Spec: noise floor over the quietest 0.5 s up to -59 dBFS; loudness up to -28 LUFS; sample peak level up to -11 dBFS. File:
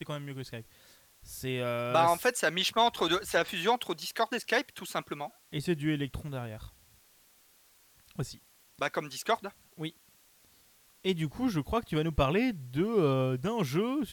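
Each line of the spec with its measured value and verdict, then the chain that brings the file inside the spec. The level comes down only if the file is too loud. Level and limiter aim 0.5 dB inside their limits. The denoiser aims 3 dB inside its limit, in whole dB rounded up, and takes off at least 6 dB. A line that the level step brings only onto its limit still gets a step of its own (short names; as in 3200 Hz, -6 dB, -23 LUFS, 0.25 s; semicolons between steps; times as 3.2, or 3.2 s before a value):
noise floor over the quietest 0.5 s -63 dBFS: OK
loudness -31.0 LUFS: OK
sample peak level -12.0 dBFS: OK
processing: none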